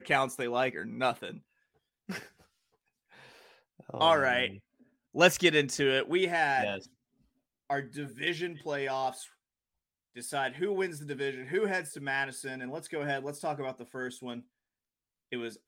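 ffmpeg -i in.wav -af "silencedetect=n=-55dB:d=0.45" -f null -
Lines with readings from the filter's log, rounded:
silence_start: 1.40
silence_end: 2.09 | silence_duration: 0.68
silence_start: 2.45
silence_end: 3.11 | silence_duration: 0.66
silence_start: 6.88
silence_end: 7.70 | silence_duration: 0.82
silence_start: 9.32
silence_end: 10.15 | silence_duration: 0.83
silence_start: 14.43
silence_end: 15.32 | silence_duration: 0.88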